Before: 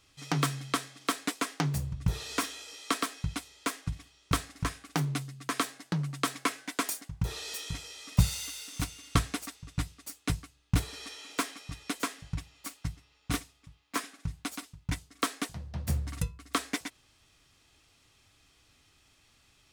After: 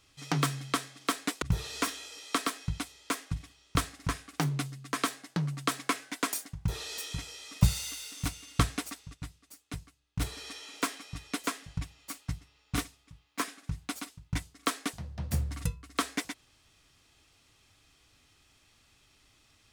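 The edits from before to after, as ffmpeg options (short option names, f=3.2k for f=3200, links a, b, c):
-filter_complex "[0:a]asplit=4[a][b][c][d];[a]atrim=end=1.422[e];[b]atrim=start=1.978:end=9.82,asetpts=PTS-STARTPTS,afade=t=out:st=7.712:d=0.13:c=exp:silence=0.334965[f];[c]atrim=start=9.82:end=10.65,asetpts=PTS-STARTPTS,volume=-9.5dB[g];[d]atrim=start=10.65,asetpts=PTS-STARTPTS,afade=t=in:d=0.13:c=exp:silence=0.334965[h];[f][g][h]concat=n=3:v=0:a=1[i];[e][i]acrossfade=d=0.004:c1=hsin:c2=hsin"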